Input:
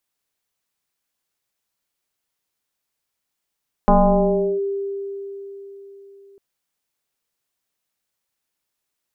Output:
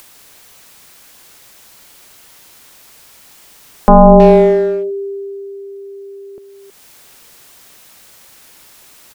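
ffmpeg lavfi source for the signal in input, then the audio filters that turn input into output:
-f lavfi -i "aevalsrc='0.355*pow(10,-3*t/4.07)*sin(2*PI*396*t+2.9*clip(1-t/0.72,0,1)*sin(2*PI*0.53*396*t))':duration=2.5:sample_rate=44100"
-filter_complex "[0:a]acompressor=mode=upward:threshold=-35dB:ratio=2.5,asplit=2[link_01][link_02];[link_02]adelay=320,highpass=300,lowpass=3400,asoftclip=type=hard:threshold=-19dB,volume=-9dB[link_03];[link_01][link_03]amix=inputs=2:normalize=0,alimiter=level_in=12dB:limit=-1dB:release=50:level=0:latency=1"

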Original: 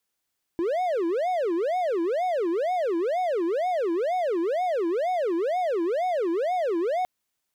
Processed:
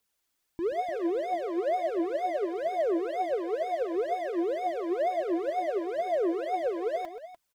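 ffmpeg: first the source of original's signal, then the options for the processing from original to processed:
-f lavfi -i "aevalsrc='0.0944*(1-4*abs(mod((535*t-205/(2*PI*2.1)*sin(2*PI*2.1*t))+0.25,1)-0.5))':duration=6.46:sample_rate=44100"
-af "alimiter=level_in=2.5dB:limit=-24dB:level=0:latency=1,volume=-2.5dB,aphaser=in_gain=1:out_gain=1:delay=3.6:decay=0.49:speed=1.5:type=triangular,aecho=1:1:104|130|296:0.106|0.2|0.224"

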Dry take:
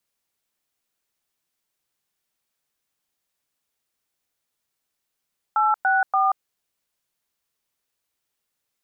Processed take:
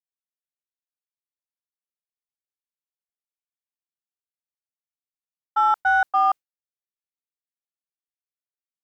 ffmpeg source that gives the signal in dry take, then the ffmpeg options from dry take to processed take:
-f lavfi -i "aevalsrc='0.112*clip(min(mod(t,0.288),0.182-mod(t,0.288))/0.002,0,1)*(eq(floor(t/0.288),0)*(sin(2*PI*852*mod(t,0.288))+sin(2*PI*1336*mod(t,0.288)))+eq(floor(t/0.288),1)*(sin(2*PI*770*mod(t,0.288))+sin(2*PI*1477*mod(t,0.288)))+eq(floor(t/0.288),2)*(sin(2*PI*770*mod(t,0.288))+sin(2*PI*1209*mod(t,0.288))))':duration=0.864:sample_rate=44100"
-filter_complex "[0:a]agate=range=-33dB:threshold=-21dB:ratio=3:detection=peak,asplit=2[link_01][link_02];[link_02]asoftclip=type=tanh:threshold=-23.5dB,volume=-8dB[link_03];[link_01][link_03]amix=inputs=2:normalize=0"

